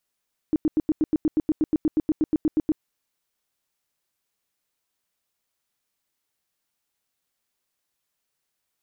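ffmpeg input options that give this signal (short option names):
-f lavfi -i "aevalsrc='0.15*sin(2*PI*310*mod(t,0.12))*lt(mod(t,0.12),9/310)':d=2.28:s=44100"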